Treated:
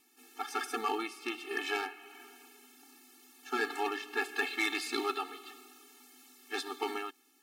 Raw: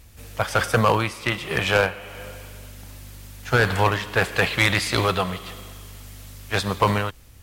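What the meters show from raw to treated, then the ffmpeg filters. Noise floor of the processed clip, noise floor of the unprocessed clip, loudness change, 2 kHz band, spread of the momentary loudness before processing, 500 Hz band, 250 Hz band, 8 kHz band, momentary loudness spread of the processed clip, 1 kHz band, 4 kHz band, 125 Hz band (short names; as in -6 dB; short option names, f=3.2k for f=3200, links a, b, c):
-68 dBFS, -47 dBFS, -13.5 dB, -12.5 dB, 22 LU, -14.5 dB, -12.5 dB, -12.0 dB, 20 LU, -12.5 dB, -12.5 dB, under -40 dB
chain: -af "afftfilt=real='re*eq(mod(floor(b*sr/1024/230),2),1)':imag='im*eq(mod(floor(b*sr/1024/230),2),1)':win_size=1024:overlap=0.75,volume=-8.5dB"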